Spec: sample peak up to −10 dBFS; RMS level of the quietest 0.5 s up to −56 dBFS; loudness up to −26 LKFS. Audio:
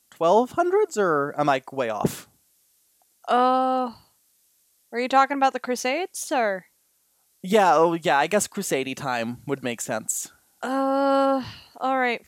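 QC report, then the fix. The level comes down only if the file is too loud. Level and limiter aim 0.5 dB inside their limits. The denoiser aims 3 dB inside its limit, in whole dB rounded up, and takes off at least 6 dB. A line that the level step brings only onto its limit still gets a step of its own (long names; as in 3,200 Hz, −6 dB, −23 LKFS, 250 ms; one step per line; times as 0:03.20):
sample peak −5.5 dBFS: out of spec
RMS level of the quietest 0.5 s −66 dBFS: in spec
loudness −23.0 LKFS: out of spec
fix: level −3.5 dB
brickwall limiter −10.5 dBFS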